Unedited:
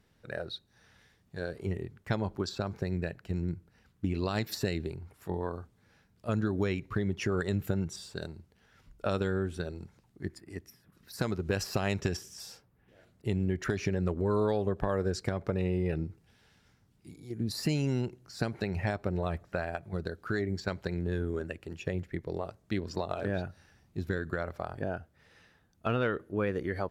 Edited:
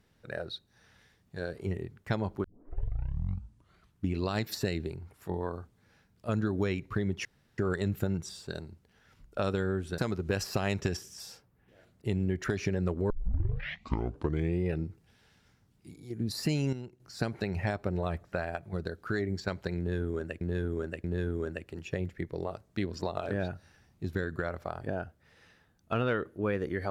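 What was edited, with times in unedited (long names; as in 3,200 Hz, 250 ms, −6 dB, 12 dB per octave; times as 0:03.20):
0:02.44: tape start 1.66 s
0:07.25: splice in room tone 0.33 s
0:09.65–0:11.18: remove
0:14.30: tape start 1.51 s
0:17.93–0:18.20: clip gain −10 dB
0:20.98–0:21.61: repeat, 3 plays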